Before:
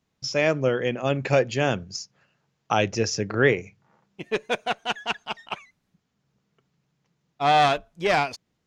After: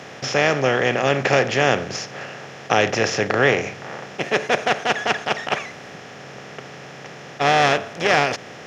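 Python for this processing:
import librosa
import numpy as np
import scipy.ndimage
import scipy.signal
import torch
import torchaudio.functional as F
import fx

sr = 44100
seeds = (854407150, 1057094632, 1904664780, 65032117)

y = fx.bin_compress(x, sr, power=0.4)
y = scipy.signal.sosfilt(scipy.signal.butter(2, 91.0, 'highpass', fs=sr, output='sos'), y)
y = fx.peak_eq(y, sr, hz=1900.0, db=3.5, octaves=1.0)
y = y * 10.0 ** (-2.0 / 20.0)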